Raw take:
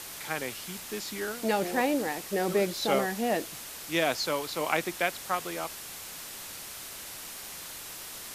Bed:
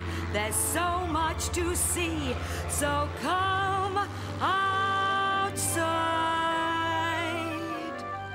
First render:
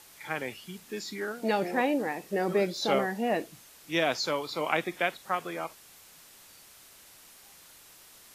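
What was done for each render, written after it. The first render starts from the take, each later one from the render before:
noise reduction from a noise print 12 dB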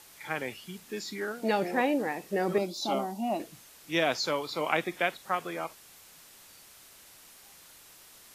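0:02.58–0:03.40: phaser with its sweep stopped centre 470 Hz, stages 6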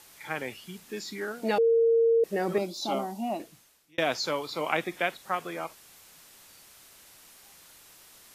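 0:01.58–0:02.24: beep over 459 Hz −18.5 dBFS
0:03.22–0:03.98: fade out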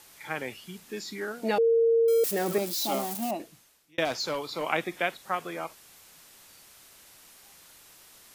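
0:02.08–0:03.31: spike at every zero crossing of −25 dBFS
0:04.05–0:04.64: gain into a clipping stage and back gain 25.5 dB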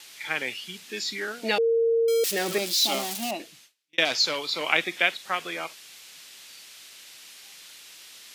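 noise gate with hold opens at −49 dBFS
meter weighting curve D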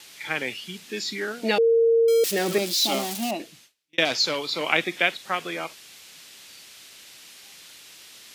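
low-shelf EQ 490 Hz +7 dB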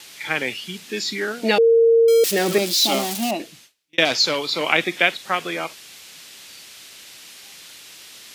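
level +4.5 dB
brickwall limiter −2 dBFS, peak gain reduction 1.5 dB

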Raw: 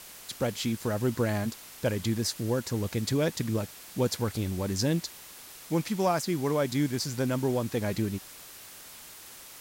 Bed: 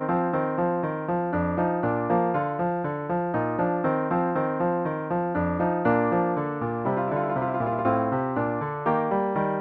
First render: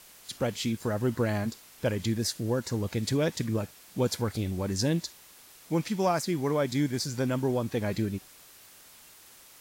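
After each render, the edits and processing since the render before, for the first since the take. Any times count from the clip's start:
noise reduction from a noise print 6 dB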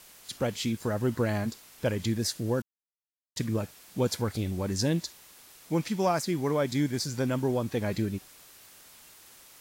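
0:02.62–0:03.36: silence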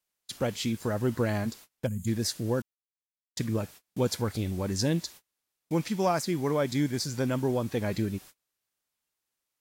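noise gate −46 dBFS, range −32 dB
0:01.86–0:02.07: gain on a spectral selection 250–6,400 Hz −23 dB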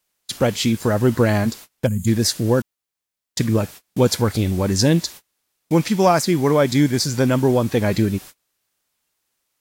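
level +11 dB

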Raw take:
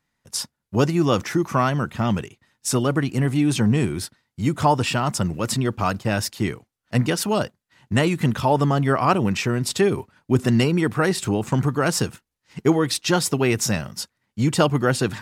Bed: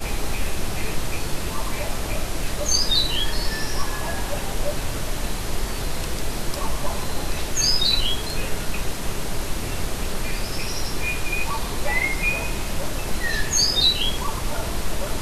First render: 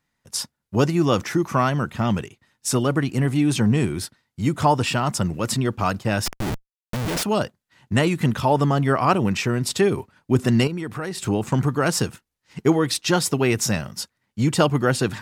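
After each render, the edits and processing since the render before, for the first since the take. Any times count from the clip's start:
0:06.26–0:07.23: comparator with hysteresis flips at −29.5 dBFS
0:10.67–0:11.24: downward compressor 3 to 1, threshold −28 dBFS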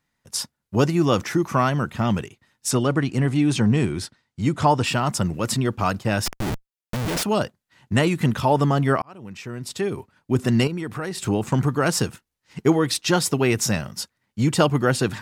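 0:02.71–0:04.84: low-pass filter 8,500 Hz
0:09.02–0:10.73: fade in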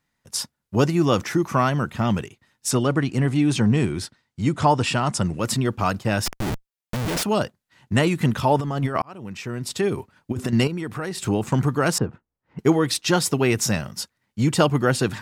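0:04.43–0:05.39: bad sample-rate conversion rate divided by 2×, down none, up filtered
0:08.59–0:10.53: compressor whose output falls as the input rises −22 dBFS, ratio −0.5
0:11.98–0:12.59: low-pass filter 1,100 Hz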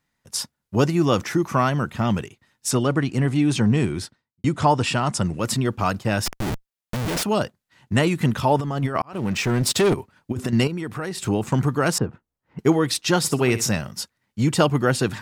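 0:03.98–0:04.44: fade out and dull
0:09.13–0:09.94: leveller curve on the samples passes 3
0:13.18–0:13.69: flutter between parallel walls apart 10.7 metres, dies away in 0.3 s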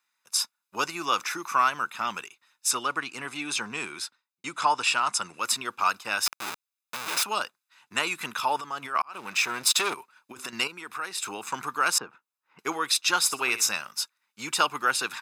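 high-pass filter 920 Hz 12 dB per octave
comb filter 0.8 ms, depth 47%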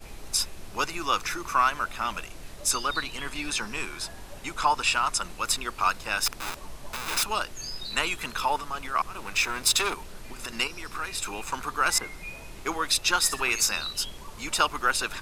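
mix in bed −17 dB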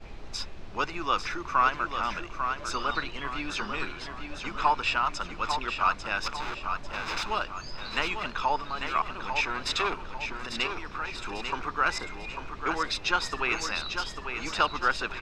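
high-frequency loss of the air 180 metres
on a send: repeating echo 846 ms, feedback 41%, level −7 dB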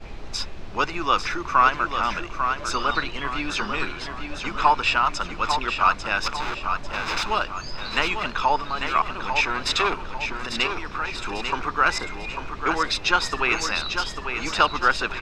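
level +6 dB

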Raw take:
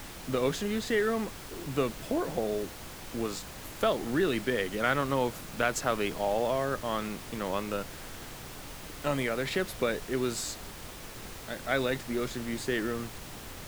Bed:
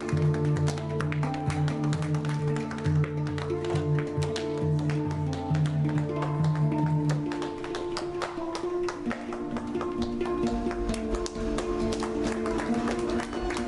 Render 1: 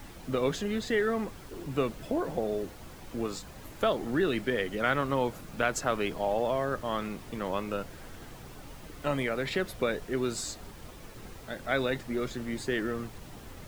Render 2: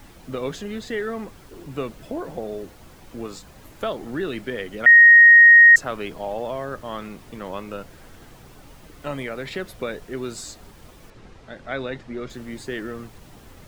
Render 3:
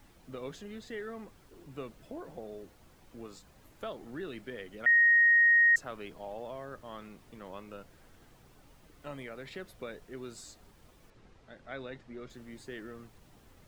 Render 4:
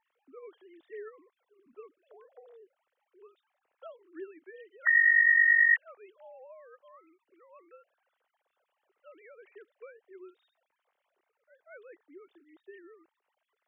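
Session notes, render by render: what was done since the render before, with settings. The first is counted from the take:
broadband denoise 8 dB, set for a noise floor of −44 dBFS
0:04.86–0:05.76: beep over 1,870 Hz −6 dBFS; 0:11.10–0:12.30: high-frequency loss of the air 92 metres
level −13 dB
three sine waves on the formant tracks

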